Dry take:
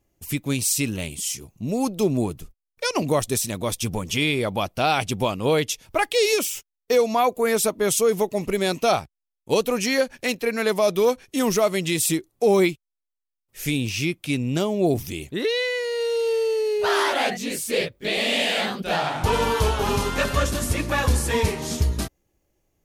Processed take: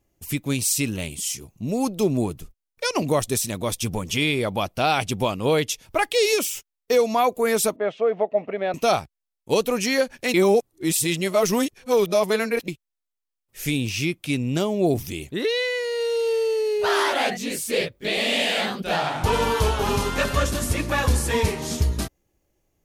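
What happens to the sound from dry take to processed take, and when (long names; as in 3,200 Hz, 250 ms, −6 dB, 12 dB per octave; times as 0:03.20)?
0:07.76–0:08.74: loudspeaker in its box 320–2,400 Hz, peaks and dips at 360 Hz −8 dB, 660 Hz +10 dB, 1,000 Hz −6 dB, 1,500 Hz −3 dB, 2,300 Hz −4 dB
0:10.34–0:12.68: reverse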